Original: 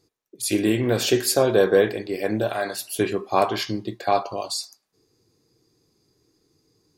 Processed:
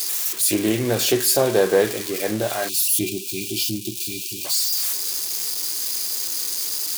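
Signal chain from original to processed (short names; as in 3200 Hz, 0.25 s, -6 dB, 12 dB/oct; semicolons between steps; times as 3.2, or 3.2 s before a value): switching spikes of -16 dBFS; spectral delete 2.69–4.45, 400–2300 Hz; Doppler distortion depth 0.13 ms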